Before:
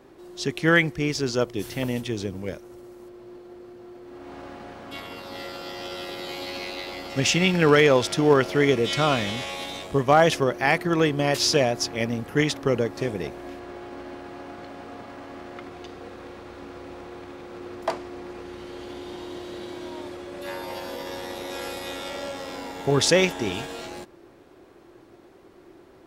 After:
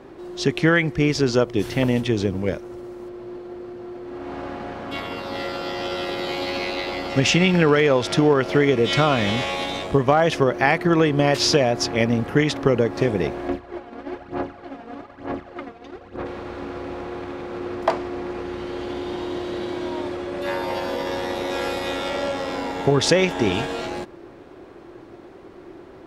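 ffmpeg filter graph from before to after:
ffmpeg -i in.wav -filter_complex "[0:a]asettb=1/sr,asplit=3[link_01][link_02][link_03];[link_01]atrim=end=13.484[link_04];[link_02]atrim=start=13.48:end=16.26,asetpts=PTS-STARTPTS,afade=type=in:duration=0.004:curve=qsin,afade=type=out:start_time=2.776:duration=0.004:curve=qsin,highshelf=frequency=4200:gain=-4,aphaser=in_gain=1:out_gain=1:delay=4.4:decay=0.58:speed=1.1:type=sinusoidal,agate=range=-33dB:threshold=-32dB:ratio=3:release=100:detection=peak[link_05];[link_03]atrim=start=16.256[link_06];[link_04][link_05]acrossfade=duration=0.004:curve1=hsin:curve2=qsin[link_07];[link_07][link_06]acrossfade=duration=0.004:curve1=qsin:curve2=hsin,aemphasis=mode=reproduction:type=50kf,acompressor=threshold=-22dB:ratio=6,volume=8.5dB" out.wav

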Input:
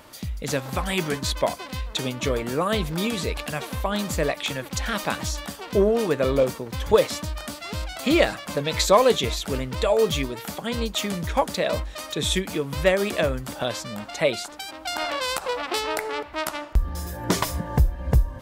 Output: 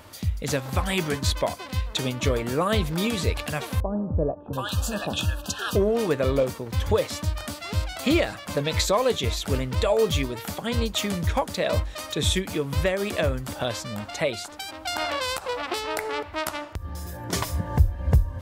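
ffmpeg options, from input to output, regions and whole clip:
ffmpeg -i in.wav -filter_complex "[0:a]asettb=1/sr,asplit=3[link_01][link_02][link_03];[link_01]atrim=end=3.804[link_04];[link_02]atrim=start=3.8:end=5.76,asetpts=PTS-STARTPTS,afade=type=in:duration=0.004:curve=qsin,afade=type=out:start_time=1.956:duration=0.004:curve=qsin,asuperstop=centerf=2100:order=12:qfactor=2.8,acrossover=split=820[link_05][link_06];[link_06]adelay=730[link_07];[link_05][link_07]amix=inputs=2:normalize=0,atrim=end_sample=86436[link_08];[link_03]atrim=start=5.756[link_09];[link_04][link_08]acrossfade=duration=0.004:curve1=hsin:curve2=qsin[link_10];[link_10][link_09]acrossfade=duration=0.004:curve1=qsin:curve2=hsin,asettb=1/sr,asplit=3[link_11][link_12][link_13];[link_11]atrim=end=16.714[link_14];[link_12]atrim=start=16.71:end=17.33,asetpts=PTS-STARTPTS,afade=type=in:duration=0.004:curve=qsin,afade=type=out:start_time=0.616:duration=0.004:curve=qsin,highpass=81,acompressor=threshold=-34dB:ratio=4:attack=3.2:release=140:knee=1:detection=peak[link_15];[link_13]atrim=start=17.326[link_16];[link_14][link_15]acrossfade=duration=0.004:curve1=hsin:curve2=qsin[link_17];[link_17][link_16]acrossfade=duration=0.004:curve1=qsin:curve2=hsin,alimiter=limit=-12.5dB:level=0:latency=1:release=347,equalizer=frequency=90:width=3.2:gain=13" out.wav

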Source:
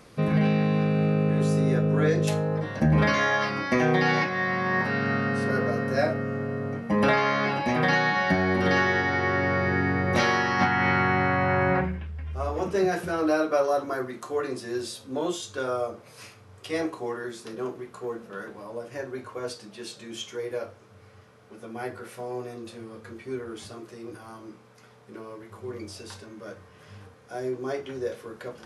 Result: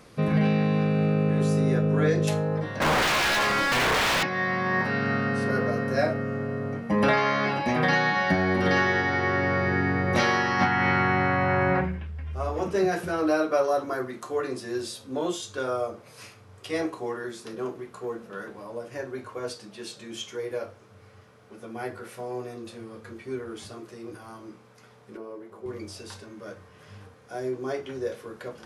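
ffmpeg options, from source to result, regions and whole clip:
ffmpeg -i in.wav -filter_complex "[0:a]asettb=1/sr,asplit=3[link_01][link_02][link_03];[link_01]atrim=end=2.804[link_04];[link_02]atrim=start=2.8:end=4.23,asetpts=PTS-STARTPTS,afade=type=in:duration=0.004:curve=qsin,afade=type=out:start_time=1.426:duration=0.004:curve=qsin,aeval=exprs='(mod(8.91*val(0)+1,2)-1)/8.91':channel_layout=same,asplit=2[link_05][link_06];[link_06]highpass=frequency=720:poles=1,volume=30dB,asoftclip=type=tanh:threshold=-17.5dB[link_07];[link_05][link_07]amix=inputs=2:normalize=0,lowpass=frequency=3000:poles=1,volume=-6dB[link_08];[link_03]atrim=start=4.226[link_09];[link_04][link_08]acrossfade=duration=0.004:curve1=hsin:curve2=qsin[link_10];[link_10][link_09]acrossfade=duration=0.004:curve1=qsin:curve2=hsin,asettb=1/sr,asplit=3[link_11][link_12][link_13];[link_11]atrim=end=25.174[link_14];[link_12]atrim=start=25.17:end=25.66,asetpts=PTS-STARTPTS,afade=type=in:duration=0.004:curve=qsin,afade=type=out:start_time=0.486:duration=0.004:curve=qsin,highpass=350,tiltshelf=frequency=740:gain=9[link_15];[link_13]atrim=start=25.656[link_16];[link_14][link_15]acrossfade=duration=0.004:curve1=hsin:curve2=qsin[link_17];[link_17][link_16]acrossfade=duration=0.004:curve1=qsin:curve2=hsin" out.wav

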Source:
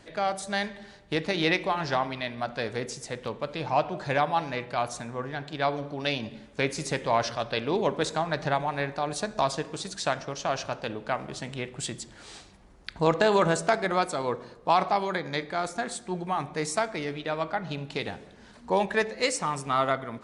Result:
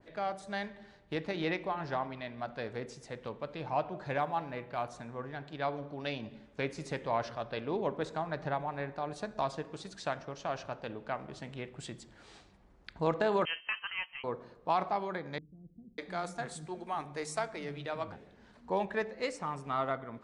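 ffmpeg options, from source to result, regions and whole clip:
ffmpeg -i in.wav -filter_complex "[0:a]asettb=1/sr,asplit=3[link_01][link_02][link_03];[link_01]atrim=end=4.184[link_04];[link_02]atrim=start=4.18:end=4.88,asetpts=PTS-STARTPTS,afade=type=in:duration=0.004:curve=qsin,afade=type=out:start_time=0.696:duration=0.004:curve=qsin,lowpass=4700,acrusher=bits=8:mode=log:mix=0:aa=0.000001[link_05];[link_03]atrim=start=4.876[link_06];[link_04][link_05]acrossfade=duration=0.004:curve1=hsin:curve2=qsin[link_07];[link_07][link_06]acrossfade=duration=0.004:curve1=qsin:curve2=hsin,asettb=1/sr,asplit=3[link_08][link_09][link_10];[link_08]atrim=end=13.454[link_11];[link_09]atrim=start=13.45:end=14.24,asetpts=PTS-STARTPTS,afade=type=in:duration=0.004:curve=qsin,afade=type=out:start_time=0.786:duration=0.004:curve=qsin,agate=range=-8dB:threshold=-31dB:ratio=16:release=100:detection=peak,acompressor=mode=upward:threshold=-33dB:ratio=2.5:attack=3.2:release=140:knee=2.83:detection=peak,lowpass=frequency=2800:width_type=q:width=0.5098,lowpass=frequency=2800:width_type=q:width=0.6013,lowpass=frequency=2800:width_type=q:width=0.9,lowpass=frequency=2800:width_type=q:width=2.563,afreqshift=-3300[link_12];[link_10]atrim=start=14.236[link_13];[link_11][link_12]acrossfade=duration=0.004:curve1=hsin:curve2=qsin[link_14];[link_14][link_13]acrossfade=duration=0.004:curve1=qsin:curve2=hsin,asettb=1/sr,asplit=3[link_15][link_16][link_17];[link_15]atrim=end=15.384[link_18];[link_16]atrim=start=15.38:end=18.12,asetpts=PTS-STARTPTS,afade=type=in:duration=0.004:curve=qsin,afade=type=out:start_time=2.736:duration=0.004:curve=qsin,aemphasis=mode=production:type=50kf,acrossover=split=220[link_19][link_20];[link_20]adelay=600[link_21];[link_19][link_21]amix=inputs=2:normalize=0,atrim=end_sample=120834[link_22];[link_17]atrim=start=18.116[link_23];[link_18][link_22]acrossfade=duration=0.004:curve1=hsin:curve2=qsin[link_24];[link_24][link_23]acrossfade=duration=0.004:curve1=qsin:curve2=hsin,lowpass=frequency=2800:poles=1,adynamicequalizer=threshold=0.0112:dfrequency=2000:dqfactor=0.7:tfrequency=2000:tqfactor=0.7:attack=5:release=100:ratio=0.375:range=3:mode=cutabove:tftype=highshelf,volume=-7dB" out.wav

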